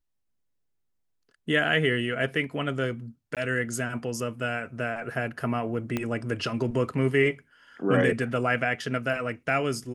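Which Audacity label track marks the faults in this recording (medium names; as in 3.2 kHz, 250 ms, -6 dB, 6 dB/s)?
3.350000	3.370000	dropout 17 ms
5.970000	5.970000	pop -14 dBFS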